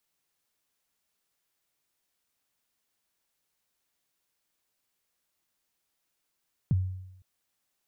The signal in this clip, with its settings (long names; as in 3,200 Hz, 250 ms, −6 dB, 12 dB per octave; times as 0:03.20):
synth kick length 0.51 s, from 180 Hz, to 93 Hz, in 28 ms, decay 0.86 s, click off, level −19 dB